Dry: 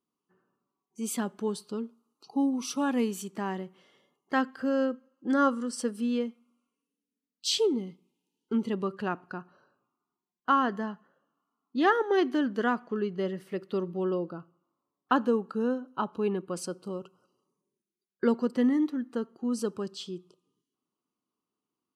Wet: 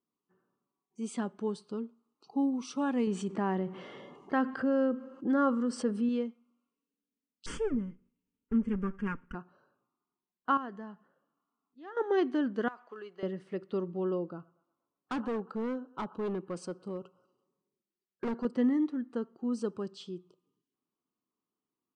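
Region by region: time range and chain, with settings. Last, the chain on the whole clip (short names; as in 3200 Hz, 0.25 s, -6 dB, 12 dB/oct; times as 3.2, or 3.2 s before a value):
3.07–6.09 high shelf 3700 Hz -10.5 dB + fast leveller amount 50%
7.46–9.35 minimum comb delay 4.3 ms + low shelf 430 Hz +5 dB + fixed phaser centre 1700 Hz, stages 4
10.57–11.97 auto swell 0.638 s + compressor 1.5:1, threshold -50 dBFS
12.68–13.23 HPF 690 Hz + compressor 10:1, threshold -36 dBFS + modulation noise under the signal 35 dB
14.32–18.45 band-limited delay 0.119 s, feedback 48%, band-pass 1100 Hz, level -23 dB + overloaded stage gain 27.5 dB
whole clip: elliptic low-pass 9100 Hz; high shelf 2700 Hz -9.5 dB; gain -1.5 dB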